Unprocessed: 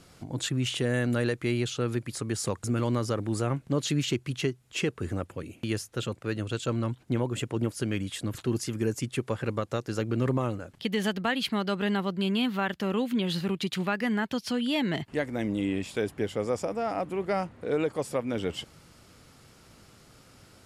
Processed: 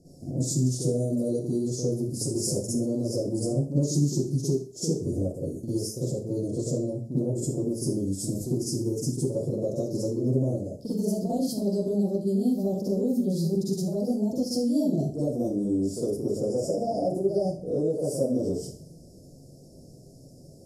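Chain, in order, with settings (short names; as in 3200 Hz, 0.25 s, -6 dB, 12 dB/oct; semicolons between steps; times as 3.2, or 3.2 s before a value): Chebyshev band-stop 650–5100 Hz, order 4; compressor 4:1, threshold -30 dBFS, peak gain reduction 7.5 dB; reverb RT60 0.45 s, pre-delay 43 ms, DRR -9.5 dB; mismatched tape noise reduction decoder only; gain -2 dB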